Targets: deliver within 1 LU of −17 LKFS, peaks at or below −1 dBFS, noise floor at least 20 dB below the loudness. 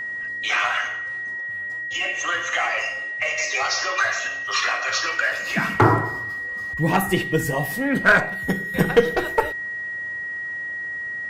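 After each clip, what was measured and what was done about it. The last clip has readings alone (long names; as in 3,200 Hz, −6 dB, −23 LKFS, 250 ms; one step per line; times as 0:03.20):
interfering tone 1,900 Hz; level of the tone −27 dBFS; integrated loudness −22.5 LKFS; sample peak −3.5 dBFS; target loudness −17.0 LKFS
→ notch filter 1,900 Hz, Q 30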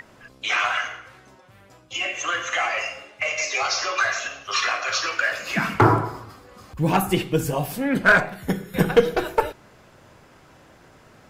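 interfering tone none found; integrated loudness −22.5 LKFS; sample peak −3.0 dBFS; target loudness −17.0 LKFS
→ level +5.5 dB
brickwall limiter −1 dBFS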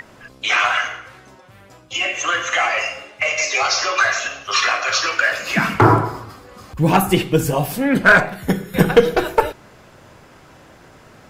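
integrated loudness −17.5 LKFS; sample peak −1.0 dBFS; background noise floor −47 dBFS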